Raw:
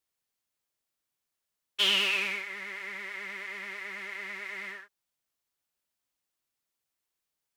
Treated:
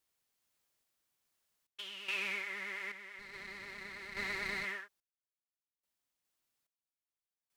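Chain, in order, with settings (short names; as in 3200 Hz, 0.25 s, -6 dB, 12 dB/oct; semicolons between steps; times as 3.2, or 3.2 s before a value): compressor 6:1, threshold -31 dBFS, peak gain reduction 9.5 dB; random-step tremolo 2.4 Hz, depth 95%; 3.19–4.65 running maximum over 5 samples; gain +4.5 dB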